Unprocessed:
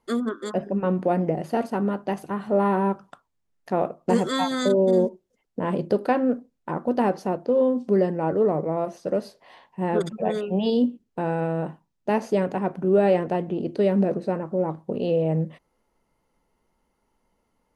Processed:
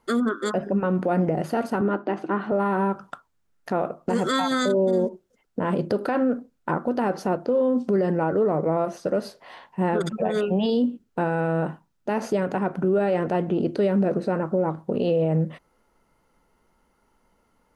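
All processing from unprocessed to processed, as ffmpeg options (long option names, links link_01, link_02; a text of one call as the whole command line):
ffmpeg -i in.wav -filter_complex "[0:a]asettb=1/sr,asplit=3[link_01][link_02][link_03];[link_01]atrim=end=1.814[link_04];[link_02]atrim=start=1.81:end=2.52,asetpts=PTS-STARTPTS,afade=type=in:duration=0.004:curve=qsin,afade=type=out:start_time=0.706:duration=0.004:curve=qsin,highpass=200,lowpass=3300,equalizer=frequency=330:width=4.7:gain=12[link_05];[link_03]atrim=start=2.516[link_06];[link_04][link_05]acrossfade=duration=0.004:curve1=hsin:curve2=qsin[link_07];[link_07][link_06]acrossfade=duration=0.004:curve1=qsin:curve2=hsin,equalizer=frequency=1400:width=3.9:gain=7,alimiter=limit=-19.5dB:level=0:latency=1:release=98,volume=5dB" out.wav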